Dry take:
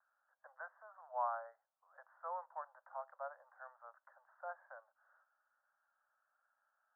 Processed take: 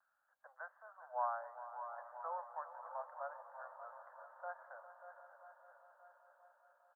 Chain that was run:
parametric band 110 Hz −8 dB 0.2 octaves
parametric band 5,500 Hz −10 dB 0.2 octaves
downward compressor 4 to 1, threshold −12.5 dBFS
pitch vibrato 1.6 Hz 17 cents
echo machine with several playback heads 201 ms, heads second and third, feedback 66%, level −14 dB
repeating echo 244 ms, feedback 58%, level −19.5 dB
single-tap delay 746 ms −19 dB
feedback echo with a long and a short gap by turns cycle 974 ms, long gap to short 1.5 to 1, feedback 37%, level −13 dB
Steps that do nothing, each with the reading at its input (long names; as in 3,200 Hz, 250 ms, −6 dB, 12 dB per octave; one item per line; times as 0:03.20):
parametric band 110 Hz: nothing at its input below 450 Hz
parametric band 5,500 Hz: nothing at its input above 1,800 Hz
downward compressor, threshold −12.5 dBFS: peak of its input −26.5 dBFS